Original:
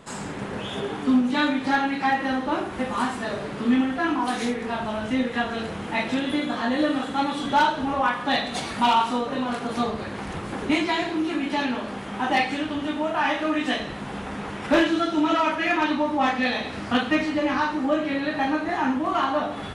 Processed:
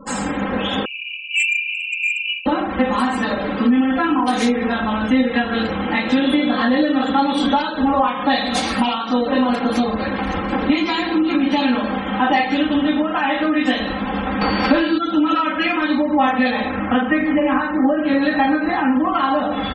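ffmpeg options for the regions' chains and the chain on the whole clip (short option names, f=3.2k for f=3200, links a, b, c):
-filter_complex "[0:a]asettb=1/sr,asplit=3[a][b][c];[a]atrim=end=0.854[d];[b]atrim=start=0.85:end=2.46,asetpts=PTS-STARTPTS,afade=t=in:d=0.004:c=qsin,afade=t=out:st=1.606:d=0.004:c=qsin,asuperpass=centerf=2600:order=12:qfactor=4.5,aeval=exprs='0.0531*sin(PI/2*2.24*val(0)/0.0531)':c=same[e];[c]atrim=start=2.456[f];[d][e]acrossfade=d=0.004:c1=hsin:c2=qsin[g];[g][f]acrossfade=d=0.004:c1=qsin:c2=hsin,asettb=1/sr,asplit=3[h][i][j];[h]atrim=end=14.414[k];[i]atrim=start=14.41:end=14.98,asetpts=PTS-STARTPTS,afade=t=in:d=0.004:c=qsin,afade=t=out:st=0.566:d=0.004:c=qsin,highshelf=f=9.6k:g=-9.5,acontrast=86,aeval=exprs='val(0)+0.00794*sin(2*PI*4500*n/s)':c=same[l];[j]atrim=start=14.976[m];[k][l]acrossfade=d=0.004:c1=hsin:c2=qsin[n];[n][m]acrossfade=d=0.004:c1=qsin:c2=hsin,asettb=1/sr,asplit=3[o][p][q];[o]atrim=end=16.504[r];[p]atrim=start=16.5:end=18.05,asetpts=PTS-STARTPTS,afade=t=in:d=0.004:c=qsin,afade=t=out:st=1.546:d=0.004:c=qsin,lowpass=2.6k,bandreject=f=60:t=h:w=6,bandreject=f=120:t=h:w=6,bandreject=f=180:t=h:w=6,bandreject=f=240:t=h:w=6,bandreject=f=300:t=h:w=6,bandreject=f=360:t=h:w=6,bandreject=f=420:t=h:w=6[s];[q]atrim=start=18.046[t];[r][s]acrossfade=d=0.004:c1=hsin:c2=qsin[u];[u][t]acrossfade=d=0.004:c1=qsin:c2=hsin,acompressor=threshold=-25dB:ratio=10,aecho=1:1:3.8:0.9,afftfilt=real='re*gte(hypot(re,im),0.0112)':imag='im*gte(hypot(re,im),0.0112)':win_size=1024:overlap=0.75,volume=8dB"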